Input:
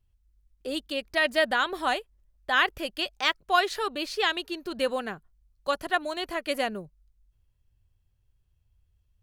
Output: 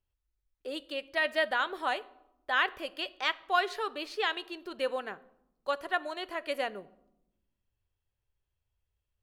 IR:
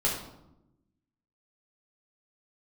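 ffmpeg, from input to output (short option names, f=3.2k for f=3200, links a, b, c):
-filter_complex "[0:a]bass=f=250:g=-12,treble=f=4k:g=-7,asplit=2[a][b];[1:a]atrim=start_sample=2205[c];[b][c]afir=irnorm=-1:irlink=0,volume=-23.5dB[d];[a][d]amix=inputs=2:normalize=0,volume=-4.5dB"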